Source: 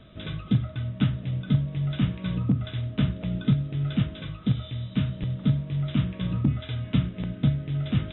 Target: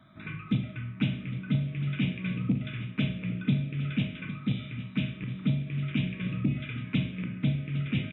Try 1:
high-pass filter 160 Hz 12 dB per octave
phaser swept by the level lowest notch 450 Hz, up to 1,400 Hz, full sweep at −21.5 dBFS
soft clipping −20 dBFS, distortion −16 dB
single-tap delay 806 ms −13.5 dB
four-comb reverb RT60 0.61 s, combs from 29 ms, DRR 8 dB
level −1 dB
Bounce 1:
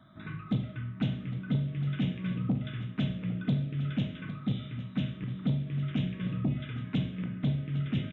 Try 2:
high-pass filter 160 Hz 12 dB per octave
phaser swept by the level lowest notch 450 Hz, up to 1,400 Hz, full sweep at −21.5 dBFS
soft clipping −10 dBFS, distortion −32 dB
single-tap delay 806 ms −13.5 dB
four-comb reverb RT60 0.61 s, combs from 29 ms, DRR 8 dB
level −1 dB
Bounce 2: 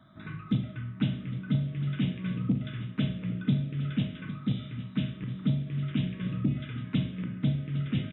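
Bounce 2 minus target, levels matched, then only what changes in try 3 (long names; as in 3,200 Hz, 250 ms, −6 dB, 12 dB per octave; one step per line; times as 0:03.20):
2,000 Hz band −6.0 dB
add after high-pass filter: parametric band 2,400 Hz +12 dB 0.32 octaves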